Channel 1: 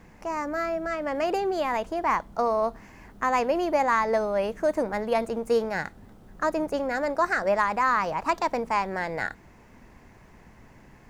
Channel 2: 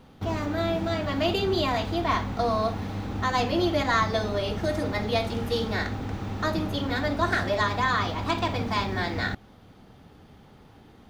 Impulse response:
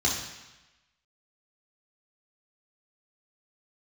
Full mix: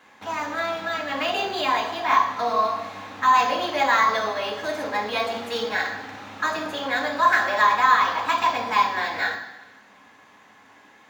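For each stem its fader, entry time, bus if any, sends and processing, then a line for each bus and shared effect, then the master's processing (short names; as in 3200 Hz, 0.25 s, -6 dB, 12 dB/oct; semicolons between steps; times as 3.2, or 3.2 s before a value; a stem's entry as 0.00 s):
-2.0 dB, 0.00 s, send -8 dB, small resonant body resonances 1100/1700 Hz, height 9 dB
+2.0 dB, 0.00 s, send -15.5 dB, dry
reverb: on, RT60 1.0 s, pre-delay 3 ms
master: HPF 520 Hz 12 dB/oct; decimation joined by straight lines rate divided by 2×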